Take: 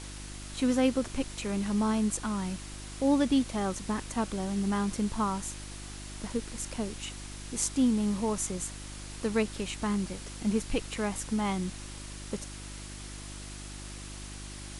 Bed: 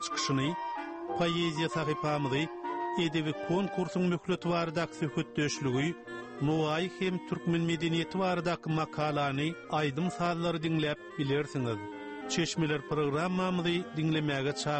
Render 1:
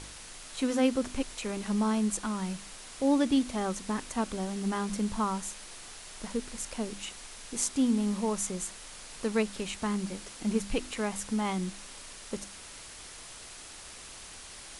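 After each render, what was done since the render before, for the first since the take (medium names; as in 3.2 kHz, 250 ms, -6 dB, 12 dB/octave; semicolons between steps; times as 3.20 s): de-hum 50 Hz, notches 7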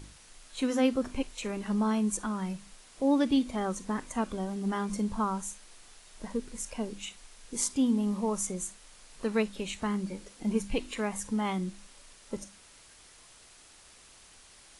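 noise print and reduce 9 dB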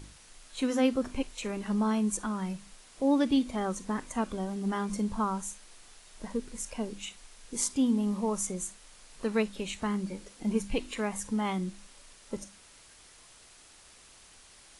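no audible change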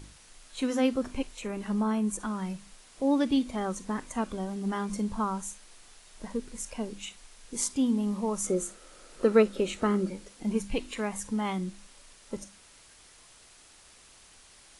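1.28–2.20 s: dynamic bell 4.7 kHz, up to -6 dB, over -49 dBFS, Q 0.81; 8.44–10.10 s: small resonant body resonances 360/510/1300 Hz, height 13 dB, ringing for 25 ms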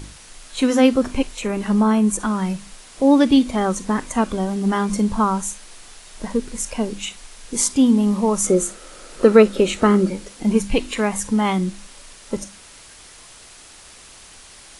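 trim +11.5 dB; peak limiter -2 dBFS, peak gain reduction 2.5 dB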